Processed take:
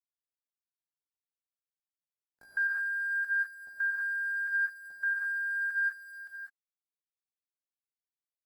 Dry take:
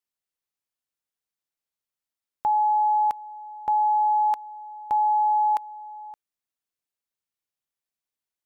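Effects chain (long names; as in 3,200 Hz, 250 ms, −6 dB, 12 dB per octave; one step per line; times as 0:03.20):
expanding power law on the bin magnitudes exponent 1.6
low-pass filter 1,000 Hz 12 dB per octave
parametric band 420 Hz +8.5 dB 0.86 octaves
in parallel at −1 dB: downward compressor 16 to 1, threshold −34 dBFS, peak gain reduction 14 dB
on the sum: multiband delay without the direct sound lows, highs 140 ms, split 380 Hz
bit reduction 9 bits
pitch shifter +11 semitones
reverb whose tail is shaped and stops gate 230 ms rising, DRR −5 dB
level −7.5 dB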